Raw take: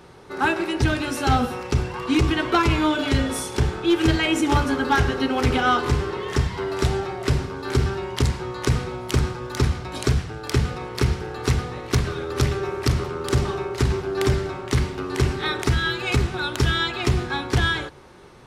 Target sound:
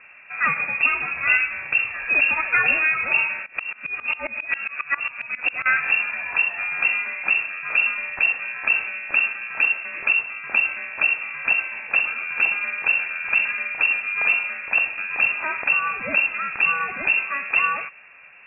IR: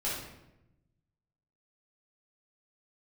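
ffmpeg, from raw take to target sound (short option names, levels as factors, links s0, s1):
-filter_complex "[0:a]lowpass=f=2400:t=q:w=0.5098,lowpass=f=2400:t=q:w=0.6013,lowpass=f=2400:t=q:w=0.9,lowpass=f=2400:t=q:w=2.563,afreqshift=-2800,asettb=1/sr,asplit=3[s0][s1][s2];[s0]atrim=end=3.464[s3];[s1]atrim=start=3.46:end=5.66,asetpts=PTS-STARTPTS,afade=t=in:d=0.004:c=qsin,afade=t=out:st=2.196:d=0.004:c=qsin,aeval=exprs='val(0)*pow(10,-22*if(lt(mod(-7.4*n/s,1),2*abs(-7.4)/1000),1-mod(-7.4*n/s,1)/(2*abs(-7.4)/1000),(mod(-7.4*n/s,1)-2*abs(-7.4)/1000)/(1-2*abs(-7.4)/1000))/20)':c=same[s4];[s2]atrim=start=5.656[s5];[s3][s4]acrossfade=d=0.004:c1=hsin:c2=qsin[s6];[s6][s5]acrossfade=d=0.004:c1=qsin:c2=hsin"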